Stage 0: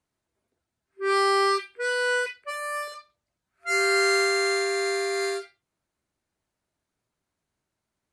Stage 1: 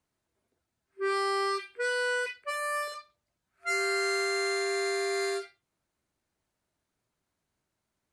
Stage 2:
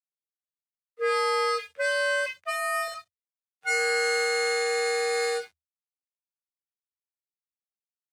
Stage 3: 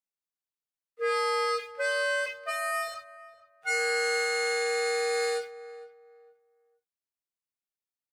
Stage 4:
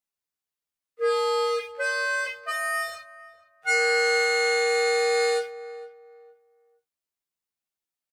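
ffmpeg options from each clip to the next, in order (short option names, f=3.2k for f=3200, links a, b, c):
-af "acompressor=threshold=-27dB:ratio=4"
-af "aeval=exprs='sgn(val(0))*max(abs(val(0))-0.00112,0)':c=same,afreqshift=77,volume=4dB"
-filter_complex "[0:a]asplit=2[a][b];[b]adelay=459,lowpass=f=1.2k:p=1,volume=-15dB,asplit=2[c][d];[d]adelay=459,lowpass=f=1.2k:p=1,volume=0.28,asplit=2[e][f];[f]adelay=459,lowpass=f=1.2k:p=1,volume=0.28[g];[a][c][e][g]amix=inputs=4:normalize=0,volume=-2.5dB"
-filter_complex "[0:a]asplit=2[a][b];[b]adelay=13,volume=-2dB[c];[a][c]amix=inputs=2:normalize=0,volume=1dB"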